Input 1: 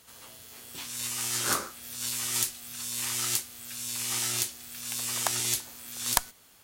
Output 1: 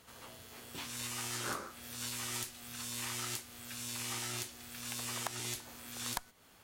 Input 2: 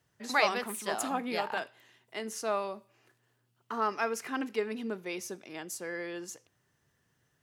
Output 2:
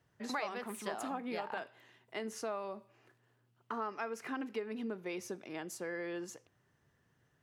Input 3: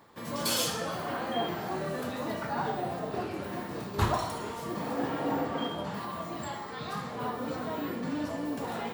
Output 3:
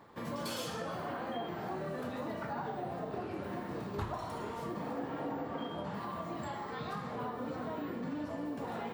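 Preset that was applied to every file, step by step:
high-shelf EQ 3,400 Hz −10 dB
downward compressor 4 to 1, threshold −38 dBFS
level +1.5 dB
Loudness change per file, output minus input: −10.0, −7.0, −6.0 LU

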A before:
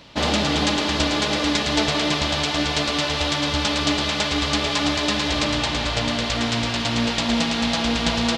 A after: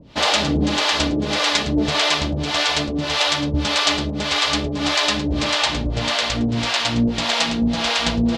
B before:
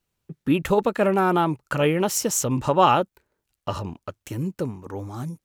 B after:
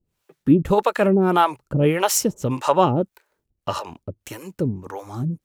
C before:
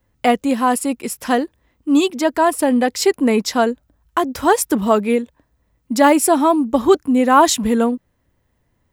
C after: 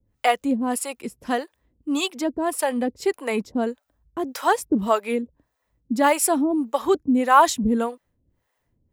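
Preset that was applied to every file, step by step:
two-band tremolo in antiphase 1.7 Hz, depth 100%, crossover 490 Hz
normalise the peak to −3 dBFS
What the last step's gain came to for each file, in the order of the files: +6.5, +8.0, −1.0 decibels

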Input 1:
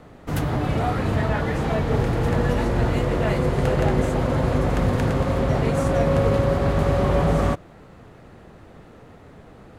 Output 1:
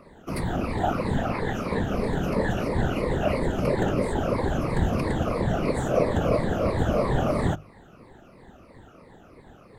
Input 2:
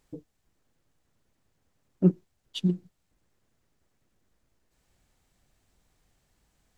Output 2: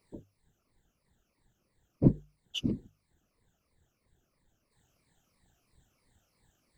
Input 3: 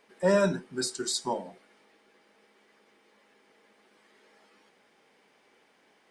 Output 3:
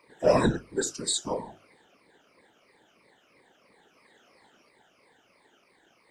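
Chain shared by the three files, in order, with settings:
rippled gain that drifts along the octave scale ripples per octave 0.93, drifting −3 Hz, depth 17 dB
random phases in short frames
mains-hum notches 50/100/150 Hz
normalise the peak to −9 dBFS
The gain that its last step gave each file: −6.5, −4.0, −2.0 decibels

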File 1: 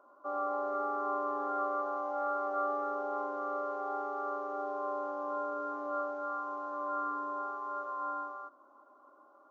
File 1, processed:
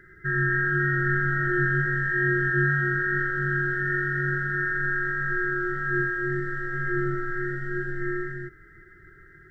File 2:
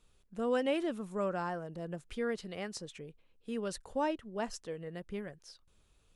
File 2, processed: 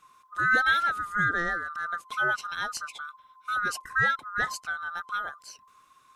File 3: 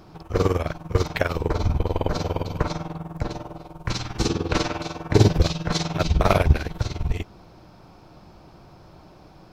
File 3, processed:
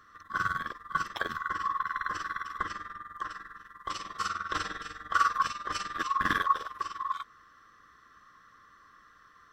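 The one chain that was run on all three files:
neighbouring bands swapped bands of 1,000 Hz
normalise the peak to −12 dBFS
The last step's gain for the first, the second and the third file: +10.5, +8.0, −10.0 decibels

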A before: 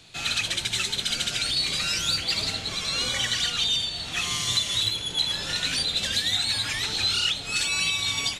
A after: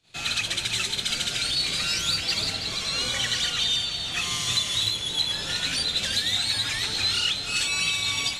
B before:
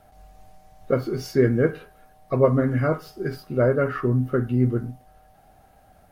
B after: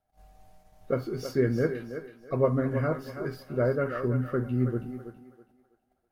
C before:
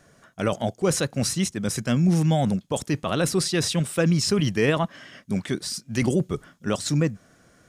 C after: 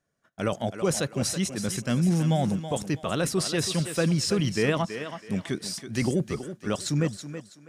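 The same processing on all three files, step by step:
noise gate −50 dBFS, range −20 dB
feedback echo with a high-pass in the loop 326 ms, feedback 30%, high-pass 250 Hz, level −9 dB
normalise the peak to −12 dBFS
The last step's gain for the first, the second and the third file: −0.5, −6.0, −3.0 decibels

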